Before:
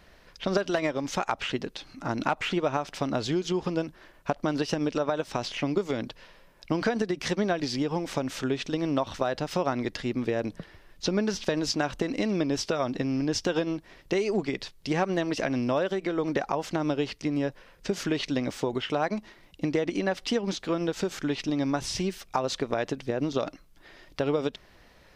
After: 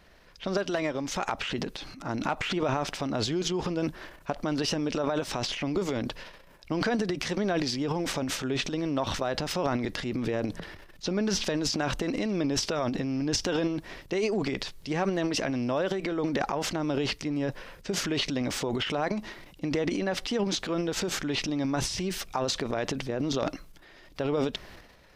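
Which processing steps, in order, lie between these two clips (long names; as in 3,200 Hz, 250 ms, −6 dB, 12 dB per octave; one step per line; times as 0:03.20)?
transient designer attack −2 dB, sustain +5 dB, from 0:01.11 sustain +11 dB
level −2 dB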